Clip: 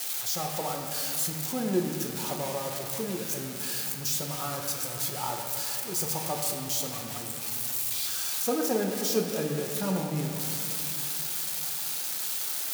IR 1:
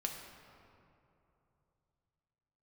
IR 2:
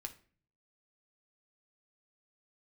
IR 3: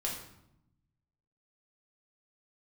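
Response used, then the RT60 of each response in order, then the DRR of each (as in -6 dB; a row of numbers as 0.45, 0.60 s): 1; 3.0, 0.45, 0.80 s; 1.0, 5.0, -3.5 dB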